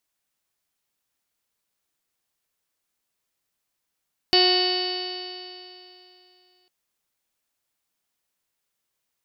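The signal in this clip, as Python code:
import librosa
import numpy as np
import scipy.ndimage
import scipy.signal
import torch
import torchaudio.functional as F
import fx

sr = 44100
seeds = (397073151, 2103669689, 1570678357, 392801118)

y = fx.additive_stiff(sr, length_s=2.35, hz=364.0, level_db=-19.5, upper_db=(-4.0, -16.0, -18.5, -11.0, -13.5, -12, -1.5, -16.5, -9.5, -11.5, 2.5, -9, -16.5), decay_s=2.84, stiffness=0.00059)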